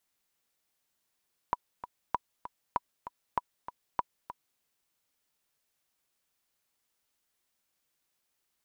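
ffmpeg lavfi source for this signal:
-f lavfi -i "aevalsrc='pow(10,(-14-12.5*gte(mod(t,2*60/195),60/195))/20)*sin(2*PI*977*mod(t,60/195))*exp(-6.91*mod(t,60/195)/0.03)':d=3.07:s=44100"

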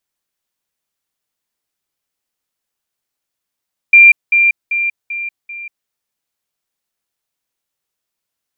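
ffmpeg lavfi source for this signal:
-f lavfi -i "aevalsrc='pow(10,(-1.5-6*floor(t/0.39))/20)*sin(2*PI*2380*t)*clip(min(mod(t,0.39),0.19-mod(t,0.39))/0.005,0,1)':d=1.95:s=44100"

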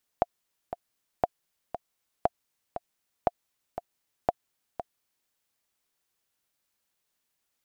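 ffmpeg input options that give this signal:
-f lavfi -i "aevalsrc='pow(10,(-8.5-11*gte(mod(t,2*60/118),60/118))/20)*sin(2*PI*701*mod(t,60/118))*exp(-6.91*mod(t,60/118)/0.03)':d=5.08:s=44100"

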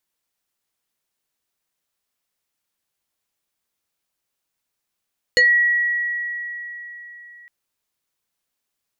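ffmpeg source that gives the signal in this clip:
-f lavfi -i "aevalsrc='0.316*pow(10,-3*t/3.88)*sin(2*PI*1920*t+1.4*pow(10,-3*t/0.18)*sin(2*PI*1.26*1920*t))':d=2.11:s=44100"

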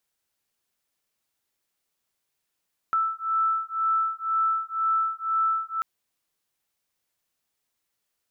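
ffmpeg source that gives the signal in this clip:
-f lavfi -i "aevalsrc='0.0531*(sin(2*PI*1320*t)+sin(2*PI*1322*t))':d=2.89:s=44100"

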